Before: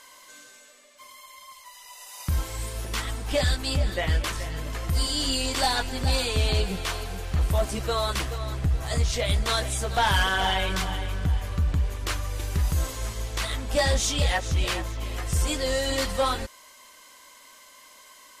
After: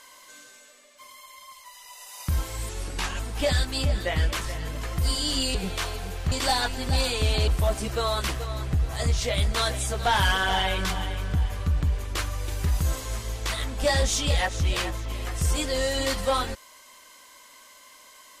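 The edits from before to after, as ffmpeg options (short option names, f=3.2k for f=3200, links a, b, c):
-filter_complex "[0:a]asplit=6[a][b][c][d][e][f];[a]atrim=end=2.694[g];[b]atrim=start=2.69:end=3.11,asetpts=PTS-STARTPTS,asetrate=36603,aresample=44100[h];[c]atrim=start=3.106:end=5.462[i];[d]atrim=start=6.618:end=7.392[j];[e]atrim=start=5.458:end=6.622[k];[f]atrim=start=7.388[l];[g][h]acrossfade=d=0.004:c1=hsin:c2=hsin[m];[m][i]acrossfade=d=0.004:c1=hsin:c2=hsin[n];[n][j]acrossfade=d=0.004:c1=hsin:c2=hsin[o];[o][k]acrossfade=d=0.004:c1=hsin:c2=hsin[p];[p][l]acrossfade=d=0.004:c1=hsin:c2=hsin"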